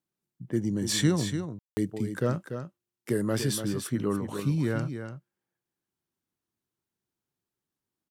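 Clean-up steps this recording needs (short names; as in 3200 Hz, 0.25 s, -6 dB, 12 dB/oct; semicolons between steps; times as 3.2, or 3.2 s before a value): room tone fill 1.59–1.77; inverse comb 0.291 s -8.5 dB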